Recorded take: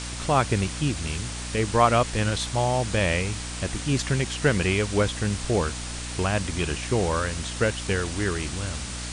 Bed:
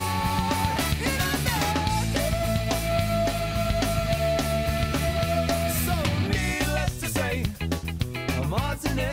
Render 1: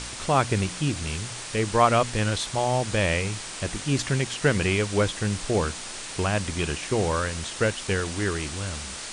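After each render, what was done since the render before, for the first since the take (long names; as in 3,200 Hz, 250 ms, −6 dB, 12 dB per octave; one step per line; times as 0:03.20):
hum removal 60 Hz, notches 5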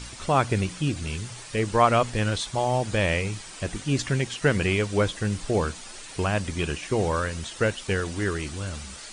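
broadband denoise 9 dB, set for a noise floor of −37 dBFS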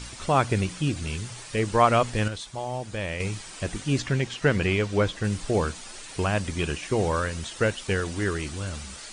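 0:02.28–0:03.20: clip gain −7.5 dB
0:03.99–0:05.24: high-frequency loss of the air 55 metres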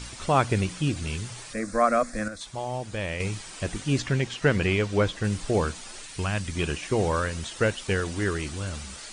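0:01.53–0:02.41: phaser with its sweep stopped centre 600 Hz, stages 8
0:06.06–0:06.55: parametric band 530 Hz −8 dB 2.2 octaves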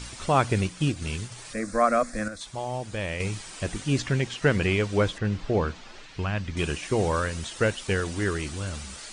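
0:00.65–0:01.45: transient designer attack +2 dB, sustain −5 dB
0:05.18–0:06.57: high-frequency loss of the air 170 metres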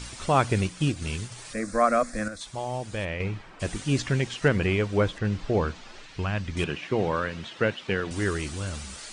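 0:03.04–0:03.59: low-pass filter 3,700 Hz → 1,500 Hz
0:04.48–0:05.18: high-shelf EQ 4,200 Hz −8.5 dB
0:06.64–0:08.11: Chebyshev band-pass filter 140–3,100 Hz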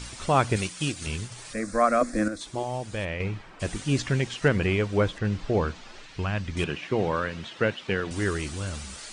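0:00.56–0:01.07: spectral tilt +2 dB per octave
0:02.01–0:02.63: parametric band 320 Hz +12 dB 0.87 octaves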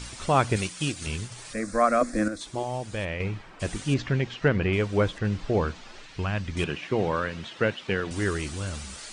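0:03.94–0:04.73: high-frequency loss of the air 150 metres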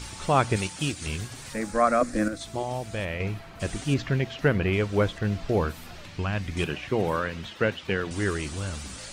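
mix in bed −21.5 dB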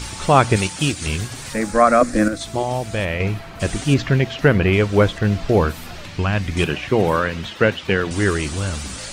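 level +8.5 dB
brickwall limiter −1 dBFS, peak gain reduction 1.5 dB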